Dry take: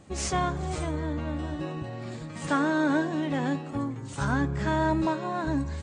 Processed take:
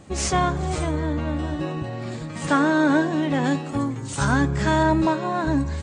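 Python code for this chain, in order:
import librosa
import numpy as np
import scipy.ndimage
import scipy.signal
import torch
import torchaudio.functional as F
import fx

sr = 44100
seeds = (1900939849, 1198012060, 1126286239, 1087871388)

y = fx.high_shelf(x, sr, hz=4000.0, db=7.5, at=(3.44, 4.83))
y = y * 10.0 ** (6.0 / 20.0)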